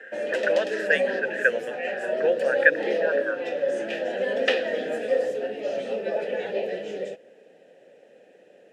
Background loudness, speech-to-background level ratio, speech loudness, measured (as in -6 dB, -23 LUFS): -27.5 LUFS, 1.5 dB, -26.0 LUFS